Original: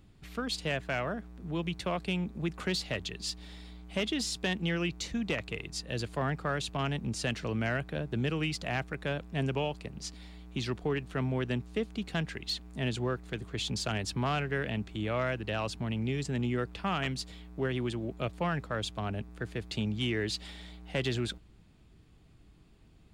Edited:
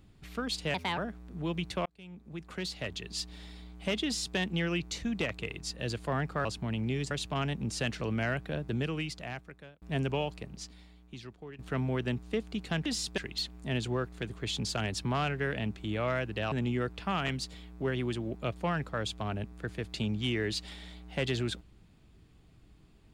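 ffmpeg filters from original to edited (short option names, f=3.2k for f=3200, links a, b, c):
-filter_complex "[0:a]asplit=11[a][b][c][d][e][f][g][h][i][j][k];[a]atrim=end=0.744[l];[b]atrim=start=0.74:end=1.07,asetpts=PTS-STARTPTS,asetrate=61299,aresample=44100[m];[c]atrim=start=1.066:end=1.95,asetpts=PTS-STARTPTS,afade=t=out:st=0.88:d=0.004:c=hsin[n];[d]atrim=start=1.95:end=6.542,asetpts=PTS-STARTPTS,afade=t=in:d=1.37[o];[e]atrim=start=15.628:end=16.292[p];[f]atrim=start=6.538:end=9.25,asetpts=PTS-STARTPTS,afade=t=out:st=1.552:d=1.16[q];[g]atrim=start=9.25:end=11.02,asetpts=PTS-STARTPTS,afade=t=in:d=0.004:c=hsin,afade=t=out:st=0.52:d=1.25:c=qua:silence=0.177828[r];[h]atrim=start=11.02:end=12.292,asetpts=PTS-STARTPTS,afade=t=in:d=0.004:c=hsin:silence=0.177828[s];[i]atrim=start=4.138:end=4.462[t];[j]atrim=start=12.288:end=15.632[u];[k]atrim=start=16.288[v];[l][m]acrossfade=d=0.004:c1=hsin:c2=hsin[w];[n][o]concat=n=2:v=0:a=1[x];[w][x]acrossfade=d=0.004:c1=hsin:c2=hsin[y];[y][p]acrossfade=d=0.004:c1=hsin:c2=hsin[z];[q][r][s]concat=n=3:v=0:a=1[aa];[z][aa]acrossfade=d=0.004:c1=hsin:c2=hsin[ab];[ab][t]acrossfade=d=0.004:c1=hsin:c2=hsin[ac];[ac][u]acrossfade=d=0.004:c1=hsin:c2=hsin[ad];[ad][v]acrossfade=d=0.004:c1=hsin:c2=hsin"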